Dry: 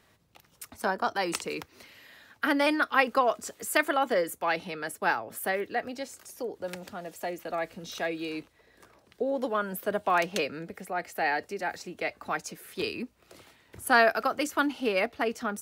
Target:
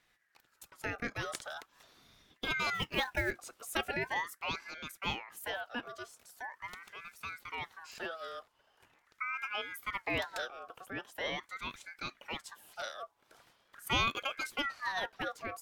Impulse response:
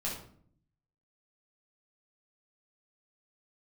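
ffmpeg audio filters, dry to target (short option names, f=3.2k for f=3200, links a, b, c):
-filter_complex "[0:a]lowshelf=f=350:g=2.5,asplit=3[a][b][c];[a]afade=t=out:st=2.73:d=0.02[d];[b]acrusher=bits=5:mode=log:mix=0:aa=0.000001,afade=t=in:st=2.73:d=0.02,afade=t=out:st=3.3:d=0.02[e];[c]afade=t=in:st=3.3:d=0.02[f];[d][e][f]amix=inputs=3:normalize=0,aeval=exprs='val(0)*sin(2*PI*1400*n/s+1400*0.35/0.42*sin(2*PI*0.42*n/s))':c=same,volume=-7dB"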